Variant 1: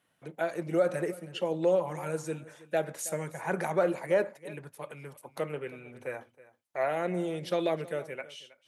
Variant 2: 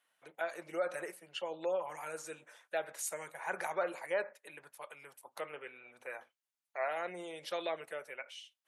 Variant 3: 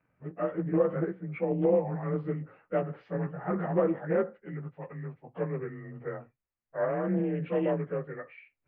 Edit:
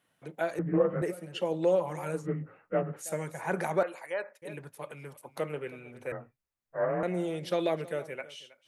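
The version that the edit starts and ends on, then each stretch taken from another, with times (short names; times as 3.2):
1
0.59–1.02 from 3
2.19–3.04 from 3, crossfade 0.16 s
3.83–4.42 from 2
6.12–7.03 from 3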